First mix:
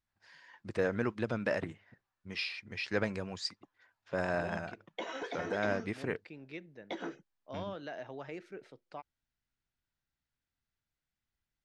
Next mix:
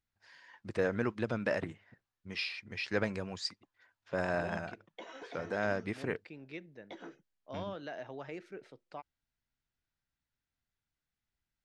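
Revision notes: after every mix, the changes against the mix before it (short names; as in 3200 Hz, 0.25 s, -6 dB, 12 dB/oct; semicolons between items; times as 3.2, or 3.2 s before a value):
background -8.0 dB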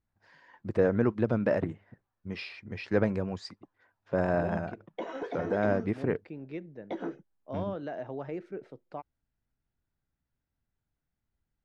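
background +6.0 dB; master: add tilt shelf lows +8.5 dB, about 1500 Hz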